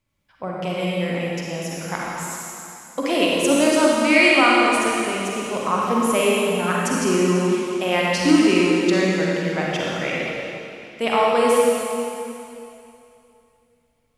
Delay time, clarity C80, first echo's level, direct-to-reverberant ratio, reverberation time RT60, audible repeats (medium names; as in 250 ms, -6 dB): no echo, -1.5 dB, no echo, -4.5 dB, 2.7 s, no echo